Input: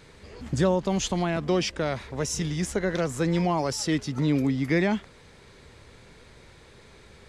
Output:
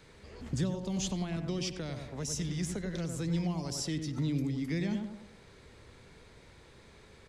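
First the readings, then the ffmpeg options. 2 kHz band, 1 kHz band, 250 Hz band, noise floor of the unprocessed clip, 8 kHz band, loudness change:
−13.0 dB, −16.0 dB, −7.5 dB, −52 dBFS, −5.5 dB, −8.5 dB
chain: -filter_complex "[0:a]asplit=2[link_01][link_02];[link_02]adelay=95,lowpass=frequency=1200:poles=1,volume=-5.5dB,asplit=2[link_03][link_04];[link_04]adelay=95,lowpass=frequency=1200:poles=1,volume=0.39,asplit=2[link_05][link_06];[link_06]adelay=95,lowpass=frequency=1200:poles=1,volume=0.39,asplit=2[link_07][link_08];[link_08]adelay=95,lowpass=frequency=1200:poles=1,volume=0.39,asplit=2[link_09][link_10];[link_10]adelay=95,lowpass=frequency=1200:poles=1,volume=0.39[link_11];[link_01][link_03][link_05][link_07][link_09][link_11]amix=inputs=6:normalize=0,acrossover=split=260|3000[link_12][link_13][link_14];[link_13]acompressor=threshold=-37dB:ratio=6[link_15];[link_12][link_15][link_14]amix=inputs=3:normalize=0,volume=-5.5dB"

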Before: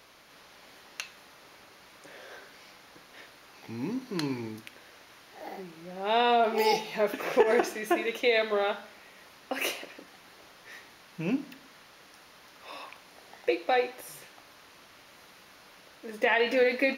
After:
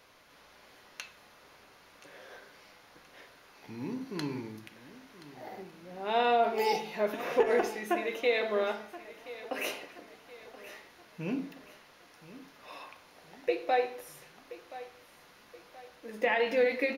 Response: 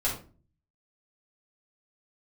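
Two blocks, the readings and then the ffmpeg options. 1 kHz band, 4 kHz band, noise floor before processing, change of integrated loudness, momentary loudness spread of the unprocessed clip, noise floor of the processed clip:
−2.5 dB, −5.5 dB, −55 dBFS, −2.5 dB, 22 LU, −59 dBFS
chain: -filter_complex "[0:a]aecho=1:1:1026|2052|3078|4104:0.15|0.0643|0.0277|0.0119,asplit=2[link_01][link_02];[1:a]atrim=start_sample=2205,lowpass=2900[link_03];[link_02][link_03]afir=irnorm=-1:irlink=0,volume=-13dB[link_04];[link_01][link_04]amix=inputs=2:normalize=0,volume=-5.5dB"

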